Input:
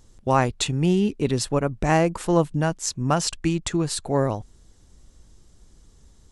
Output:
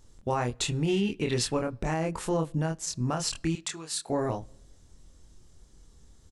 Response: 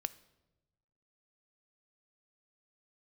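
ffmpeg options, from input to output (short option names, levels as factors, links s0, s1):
-filter_complex "[0:a]asplit=2[s0][s1];[s1]adelay=25,volume=0.668[s2];[s0][s2]amix=inputs=2:normalize=0,alimiter=limit=0.2:level=0:latency=1:release=123,asettb=1/sr,asplit=3[s3][s4][s5];[s3]atrim=end=0.884[s6];[s4]atrim=start=0.88:end=1.57,asetpts=PTS-STARTPTS,afade=t=in:d=0.004:c=qsin,afade=t=out:st=0.686:d=0.004:c=qsin,equalizer=f=2400:t=o:w=1.6:g=8.5[s7];[s5]atrim=start=1.566[s8];[s6][s7]acrossfade=d=0.004:c1=hsin:c2=qsin[s9];[s9][s8]acrossfade=d=0.004:c1=qsin:c2=hsin,asettb=1/sr,asplit=3[s10][s11][s12];[s10]atrim=end=3.554[s13];[s11]atrim=start=3.55:end=4.1,asetpts=PTS-STARTPTS,afade=t=in:d=0.004:c=qsin,afade=t=out:st=0.546:d=0.004:c=qsin,highpass=f=1500:p=1[s14];[s12]atrim=start=4.096[s15];[s13][s14]acrossfade=d=0.004:c1=hsin:c2=qsin[s16];[s16][s15]acrossfade=d=0.004:c1=qsin:c2=hsin,asplit=2[s17][s18];[1:a]atrim=start_sample=2205[s19];[s18][s19]afir=irnorm=-1:irlink=0,volume=0.473[s20];[s17][s20]amix=inputs=2:normalize=0,volume=0.422"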